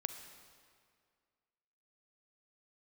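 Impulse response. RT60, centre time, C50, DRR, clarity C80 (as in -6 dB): 2.1 s, 26 ms, 8.5 dB, 8.0 dB, 9.5 dB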